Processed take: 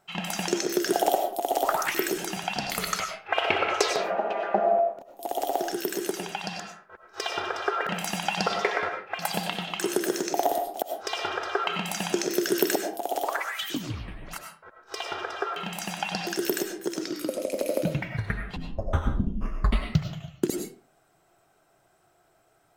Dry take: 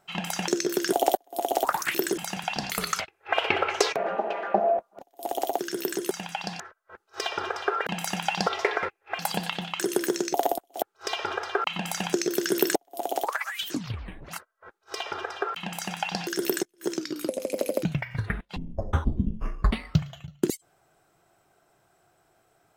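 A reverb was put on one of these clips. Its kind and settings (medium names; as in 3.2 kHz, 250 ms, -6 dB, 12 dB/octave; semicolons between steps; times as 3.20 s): algorithmic reverb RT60 0.41 s, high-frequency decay 0.7×, pre-delay 60 ms, DRR 4 dB; trim -1 dB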